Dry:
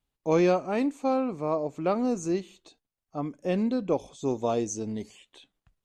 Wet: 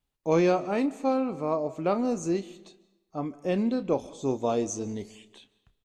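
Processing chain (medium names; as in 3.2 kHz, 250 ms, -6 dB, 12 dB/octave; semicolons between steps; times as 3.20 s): doubling 30 ms -13 dB; algorithmic reverb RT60 1 s, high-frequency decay 0.85×, pre-delay 105 ms, DRR 19 dB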